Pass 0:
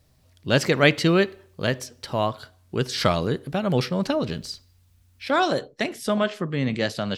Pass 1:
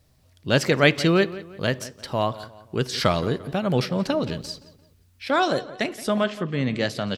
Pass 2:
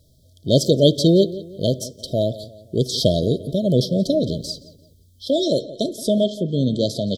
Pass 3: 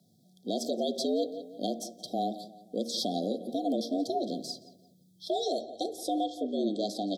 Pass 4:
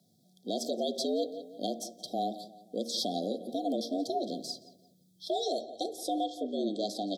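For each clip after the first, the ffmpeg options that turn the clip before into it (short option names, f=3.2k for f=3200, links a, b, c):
-filter_complex "[0:a]asplit=2[a][b];[b]adelay=173,lowpass=f=3.6k:p=1,volume=-16.5dB,asplit=2[c][d];[d]adelay=173,lowpass=f=3.6k:p=1,volume=0.41,asplit=2[e][f];[f]adelay=173,lowpass=f=3.6k:p=1,volume=0.41,asplit=2[g][h];[h]adelay=173,lowpass=f=3.6k:p=1,volume=0.41[i];[a][c][e][g][i]amix=inputs=5:normalize=0"
-af "afftfilt=real='re*(1-between(b*sr/4096,680,3100))':imag='im*(1-between(b*sr/4096,680,3100))':win_size=4096:overlap=0.75,volume=5dB"
-af "afreqshift=94,bandreject=f=77.94:t=h:w=4,bandreject=f=155.88:t=h:w=4,bandreject=f=233.82:t=h:w=4,bandreject=f=311.76:t=h:w=4,bandreject=f=389.7:t=h:w=4,bandreject=f=467.64:t=h:w=4,bandreject=f=545.58:t=h:w=4,bandreject=f=623.52:t=h:w=4,bandreject=f=701.46:t=h:w=4,bandreject=f=779.4:t=h:w=4,bandreject=f=857.34:t=h:w=4,bandreject=f=935.28:t=h:w=4,bandreject=f=1.01322k:t=h:w=4,bandreject=f=1.09116k:t=h:w=4,bandreject=f=1.1691k:t=h:w=4,bandreject=f=1.24704k:t=h:w=4,bandreject=f=1.32498k:t=h:w=4,bandreject=f=1.40292k:t=h:w=4,bandreject=f=1.48086k:t=h:w=4,bandreject=f=1.5588k:t=h:w=4,bandreject=f=1.63674k:t=h:w=4,bandreject=f=1.71468k:t=h:w=4,bandreject=f=1.79262k:t=h:w=4,bandreject=f=1.87056k:t=h:w=4,bandreject=f=1.9485k:t=h:w=4,bandreject=f=2.02644k:t=h:w=4,bandreject=f=2.10438k:t=h:w=4,bandreject=f=2.18232k:t=h:w=4,bandreject=f=2.26026k:t=h:w=4,bandreject=f=2.3382k:t=h:w=4,bandreject=f=2.41614k:t=h:w=4,alimiter=limit=-11.5dB:level=0:latency=1:release=148,volume=-9dB"
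-af "lowshelf=f=340:g=-4.5"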